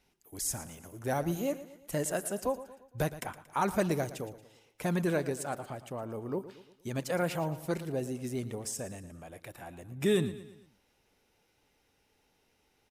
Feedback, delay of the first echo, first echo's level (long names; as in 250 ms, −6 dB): 47%, 115 ms, −15.0 dB